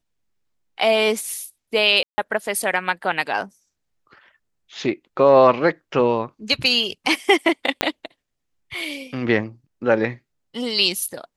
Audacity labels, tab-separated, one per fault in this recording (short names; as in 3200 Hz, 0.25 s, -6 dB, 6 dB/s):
2.030000	2.180000	gap 0.15 s
7.810000	7.810000	pop -2 dBFS